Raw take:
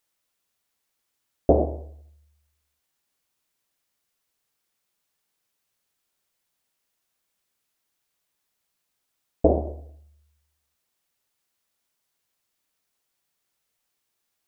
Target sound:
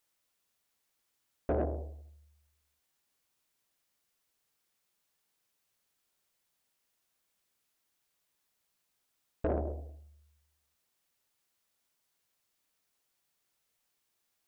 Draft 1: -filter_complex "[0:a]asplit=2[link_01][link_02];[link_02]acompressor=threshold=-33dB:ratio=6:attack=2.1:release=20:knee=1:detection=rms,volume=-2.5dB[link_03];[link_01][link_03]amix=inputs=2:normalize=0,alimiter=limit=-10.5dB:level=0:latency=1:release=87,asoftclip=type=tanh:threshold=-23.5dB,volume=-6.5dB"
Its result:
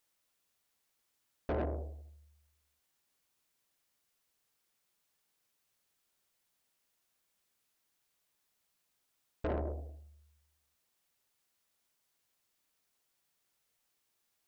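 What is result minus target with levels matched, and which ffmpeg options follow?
soft clipping: distortion +6 dB
-filter_complex "[0:a]asplit=2[link_01][link_02];[link_02]acompressor=threshold=-33dB:ratio=6:attack=2.1:release=20:knee=1:detection=rms,volume=-2.5dB[link_03];[link_01][link_03]amix=inputs=2:normalize=0,alimiter=limit=-10.5dB:level=0:latency=1:release=87,asoftclip=type=tanh:threshold=-17dB,volume=-6.5dB"

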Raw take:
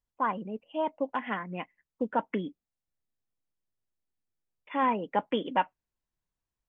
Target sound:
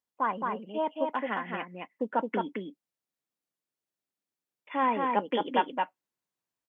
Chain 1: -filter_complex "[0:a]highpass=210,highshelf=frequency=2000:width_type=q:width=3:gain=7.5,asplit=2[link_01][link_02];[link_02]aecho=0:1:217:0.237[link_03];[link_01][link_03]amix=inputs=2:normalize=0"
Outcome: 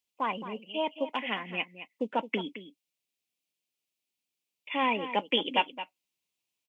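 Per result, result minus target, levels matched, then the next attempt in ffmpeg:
4,000 Hz band +11.0 dB; echo-to-direct −9 dB
-filter_complex "[0:a]highpass=210,asplit=2[link_01][link_02];[link_02]aecho=0:1:217:0.237[link_03];[link_01][link_03]amix=inputs=2:normalize=0"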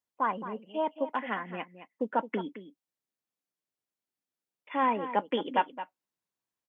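echo-to-direct −9 dB
-filter_complex "[0:a]highpass=210,asplit=2[link_01][link_02];[link_02]aecho=0:1:217:0.668[link_03];[link_01][link_03]amix=inputs=2:normalize=0"

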